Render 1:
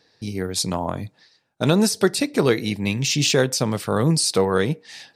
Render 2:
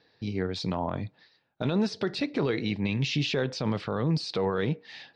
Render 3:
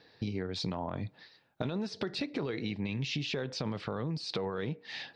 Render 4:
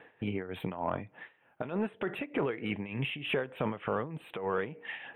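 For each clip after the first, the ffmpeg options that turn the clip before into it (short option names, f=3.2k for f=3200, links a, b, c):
-af "alimiter=limit=-15dB:level=0:latency=1:release=31,lowpass=f=4.2k:w=0.5412,lowpass=f=4.2k:w=1.3066,volume=-3dB"
-af "acompressor=threshold=-35dB:ratio=12,volume=4dB"
-filter_complex "[0:a]tremolo=f=3.3:d=0.76,asplit=2[a][b];[b]highpass=f=720:p=1,volume=12dB,asoftclip=type=tanh:threshold=-21dB[c];[a][c]amix=inputs=2:normalize=0,lowpass=f=2.1k:p=1,volume=-6dB,asuperstop=centerf=5400:order=12:qfactor=0.98,volume=4.5dB"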